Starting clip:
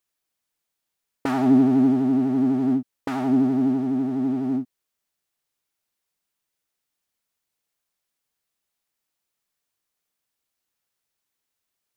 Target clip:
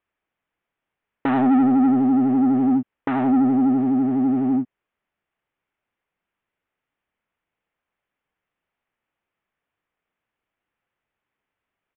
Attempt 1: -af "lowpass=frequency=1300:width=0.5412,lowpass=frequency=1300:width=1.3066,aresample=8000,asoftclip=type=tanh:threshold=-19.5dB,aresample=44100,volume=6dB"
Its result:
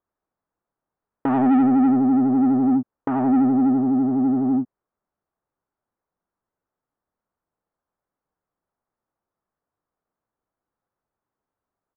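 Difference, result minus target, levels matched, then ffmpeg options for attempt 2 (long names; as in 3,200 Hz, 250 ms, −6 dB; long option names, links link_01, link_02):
2,000 Hz band −5.0 dB
-af "lowpass=frequency=2600:width=0.5412,lowpass=frequency=2600:width=1.3066,aresample=8000,asoftclip=type=tanh:threshold=-19.5dB,aresample=44100,volume=6dB"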